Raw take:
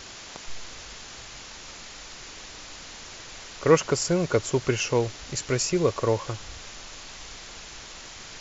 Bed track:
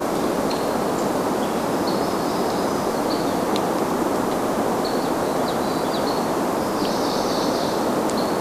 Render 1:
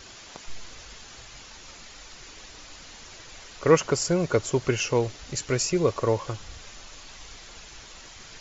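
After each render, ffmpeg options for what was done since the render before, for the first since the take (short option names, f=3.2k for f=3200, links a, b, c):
-af "afftdn=nr=6:nf=-43"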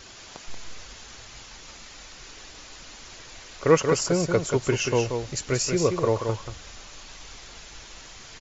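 -af "aecho=1:1:182:0.501"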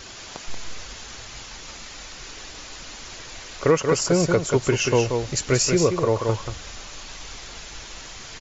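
-af "alimiter=limit=-13.5dB:level=0:latency=1:release=371,acontrast=37"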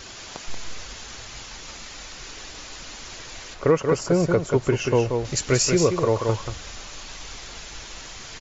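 -filter_complex "[0:a]asettb=1/sr,asplit=3[a][b][c];[a]atrim=end=3.544[d];[b]atrim=start=3.54:end=5.25,asetpts=PTS-STARTPTS,afade=t=in:d=0.004:c=qsin,afade=t=out:st=1.706:d=0.004:c=qsin,highshelf=f=2.4k:g=-10[e];[c]atrim=start=5.246[f];[d][e]acrossfade=d=0.004:c1=hsin:c2=qsin[g];[g][f]acrossfade=d=0.004:c1=qsin:c2=hsin"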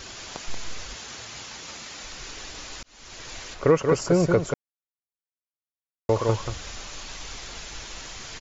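-filter_complex "[0:a]asettb=1/sr,asplit=3[a][b][c];[a]atrim=end=0.964[d];[b]atrim=start=0.96:end=2.04,asetpts=PTS-STARTPTS,afade=t=in:d=0.004:c=qsin,afade=t=out:st=1.076:d=0.004:c=qsin,highpass=96[e];[c]atrim=start=2.036[f];[d][e]acrossfade=d=0.004:c1=hsin:c2=qsin[g];[g][f]acrossfade=d=0.004:c1=qsin:c2=hsin,asplit=4[h][i][j][k];[h]atrim=end=2.83,asetpts=PTS-STARTPTS,afade=t=out:st=2.826:d=0.004:c=hsin[l];[i]atrim=start=2.83:end=4.54,asetpts=PTS-STARTPTS,afade=t=in:d=0.47,afade=t=out:st=1.706:d=0.004:c=hsin[m];[j]atrim=start=4.54:end=6.09,asetpts=PTS-STARTPTS,volume=0[n];[k]atrim=start=6.09,asetpts=PTS-STARTPTS,afade=t=in:d=0.004:c=hsin[o];[l][m][n][o]concat=n=4:v=0:a=1"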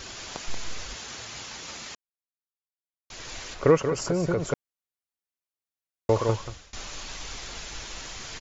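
-filter_complex "[0:a]asettb=1/sr,asplit=3[a][b][c];[a]atrim=end=3.864[d];[b]atrim=start=3.86:end=4.5,asetpts=PTS-STARTPTS,afade=t=in:d=0.004:c=qsin,afade=t=out:st=0.636:d=0.004:c=qsin,acompressor=threshold=-21dB:ratio=6:attack=3.2:release=140:knee=1:detection=peak[e];[c]atrim=start=4.496[f];[d][e]acrossfade=d=0.004:c1=hsin:c2=qsin[g];[g][f]acrossfade=d=0.004:c1=qsin:c2=hsin,asplit=4[h][i][j][k];[h]atrim=end=1.95,asetpts=PTS-STARTPTS,afade=t=out:st=1.946:d=0.004:c=hsin[l];[i]atrim=start=1.95:end=3.1,asetpts=PTS-STARTPTS,volume=0[m];[j]atrim=start=3.1:end=6.73,asetpts=PTS-STARTPTS,afade=t=in:d=0.004:c=hsin,afade=t=out:st=3.09:d=0.54:silence=0.0630957[n];[k]atrim=start=6.73,asetpts=PTS-STARTPTS,afade=t=in:d=0.004:c=hsin:silence=0.0630957[o];[l][m][n][o]concat=n=4:v=0:a=1"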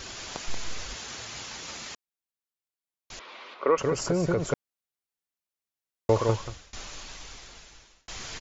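-filter_complex "[0:a]asettb=1/sr,asplit=3[a][b][c];[a]atrim=end=3.194[d];[b]atrim=start=3.19:end=3.78,asetpts=PTS-STARTPTS,afade=t=in:d=0.004:c=qsin,afade=t=out:st=0.586:d=0.004:c=qsin,highpass=f=290:w=0.5412,highpass=f=290:w=1.3066,equalizer=f=310:t=q:w=4:g=-8,equalizer=f=450:t=q:w=4:g=-4,equalizer=f=720:t=q:w=4:g=-5,equalizer=f=1.1k:t=q:w=4:g=4,equalizer=f=1.7k:t=q:w=4:g=-8,equalizer=f=2.8k:t=q:w=4:g=-4,lowpass=f=3.3k:w=0.5412,lowpass=f=3.3k:w=1.3066[e];[c]atrim=start=3.776[f];[d][e]acrossfade=d=0.004:c1=hsin:c2=qsin[g];[g][f]acrossfade=d=0.004:c1=qsin:c2=hsin,asplit=2[h][i];[h]atrim=end=8.08,asetpts=PTS-STARTPTS,afade=t=out:st=6.45:d=1.63[j];[i]atrim=start=8.08,asetpts=PTS-STARTPTS,afade=t=in:d=0.004:c=hsin[k];[j][k]concat=n=2:v=0:a=1"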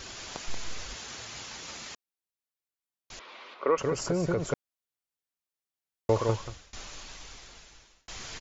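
-af "volume=-2.5dB"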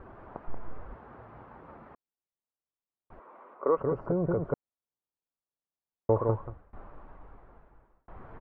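-af "lowpass=f=1.2k:w=0.5412,lowpass=f=1.2k:w=1.3066"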